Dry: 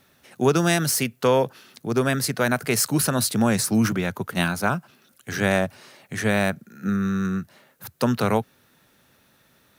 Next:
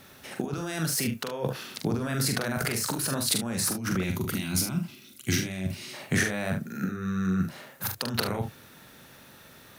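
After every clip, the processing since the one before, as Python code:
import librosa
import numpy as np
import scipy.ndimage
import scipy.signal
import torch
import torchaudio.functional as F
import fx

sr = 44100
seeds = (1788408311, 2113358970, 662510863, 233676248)

y = fx.over_compress(x, sr, threshold_db=-30.0, ratio=-1.0)
y = fx.room_early_taps(y, sr, ms=(43, 73), db=(-5.0, -11.5))
y = fx.spec_box(y, sr, start_s=4.04, length_s=1.9, low_hz=390.0, high_hz=1900.0, gain_db=-12)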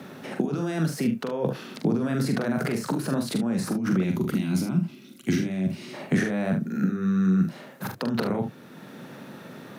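y = scipy.signal.sosfilt(scipy.signal.butter(4, 170.0, 'highpass', fs=sr, output='sos'), x)
y = fx.tilt_eq(y, sr, slope=-3.5)
y = fx.band_squash(y, sr, depth_pct=40)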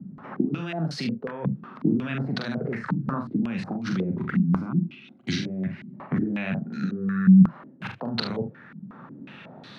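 y = fx.peak_eq(x, sr, hz=450.0, db=-9.0, octaves=2.0)
y = fx.filter_held_lowpass(y, sr, hz=5.5, low_hz=200.0, high_hz=4200.0)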